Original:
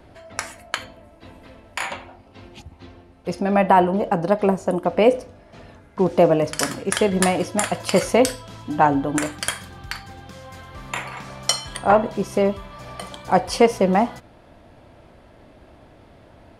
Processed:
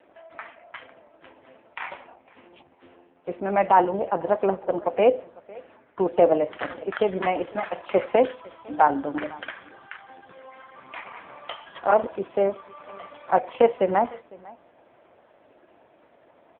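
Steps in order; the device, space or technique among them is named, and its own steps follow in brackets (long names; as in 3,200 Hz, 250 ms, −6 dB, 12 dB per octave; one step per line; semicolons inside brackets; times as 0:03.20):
satellite phone (band-pass filter 340–3,000 Hz; single-tap delay 503 ms −23 dB; level −1 dB; AMR narrowband 4.75 kbit/s 8,000 Hz)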